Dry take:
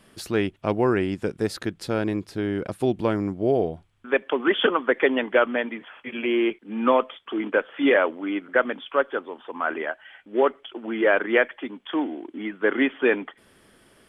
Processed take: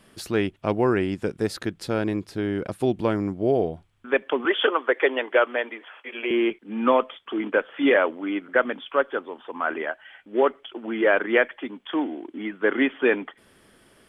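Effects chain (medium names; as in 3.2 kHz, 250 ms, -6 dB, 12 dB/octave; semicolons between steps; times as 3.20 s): 4.45–6.31 s: high-pass 340 Hz 24 dB/octave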